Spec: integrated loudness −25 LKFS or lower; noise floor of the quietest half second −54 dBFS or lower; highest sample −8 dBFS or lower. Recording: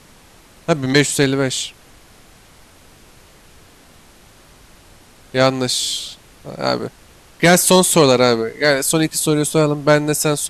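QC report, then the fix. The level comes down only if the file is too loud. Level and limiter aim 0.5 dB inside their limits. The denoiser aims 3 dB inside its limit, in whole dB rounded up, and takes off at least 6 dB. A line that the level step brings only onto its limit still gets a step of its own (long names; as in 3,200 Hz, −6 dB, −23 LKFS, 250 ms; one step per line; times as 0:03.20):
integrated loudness −16.0 LKFS: out of spec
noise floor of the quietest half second −47 dBFS: out of spec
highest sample −2.0 dBFS: out of spec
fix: level −9.5 dB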